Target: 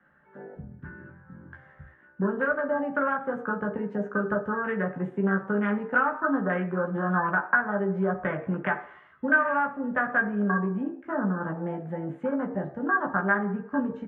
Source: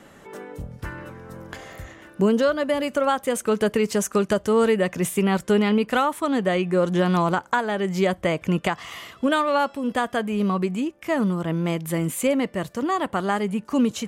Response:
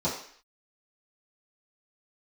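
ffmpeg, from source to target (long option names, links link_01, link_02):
-filter_complex "[0:a]afwtdn=0.0447,acrossover=split=120|250[link_01][link_02][link_03];[link_01]acompressor=threshold=-51dB:ratio=4[link_04];[link_02]acompressor=threshold=-34dB:ratio=4[link_05];[link_03]acompressor=threshold=-24dB:ratio=4[link_06];[link_04][link_05][link_06]amix=inputs=3:normalize=0,lowpass=frequency=1600:width_type=q:width=6.6,asplit=2[link_07][link_08];[link_08]adelay=15,volume=-4dB[link_09];[link_07][link_09]amix=inputs=2:normalize=0,asplit=2[link_10][link_11];[1:a]atrim=start_sample=2205,asetrate=41895,aresample=44100[link_12];[link_11][link_12]afir=irnorm=-1:irlink=0,volume=-15dB[link_13];[link_10][link_13]amix=inputs=2:normalize=0,volume=-6dB"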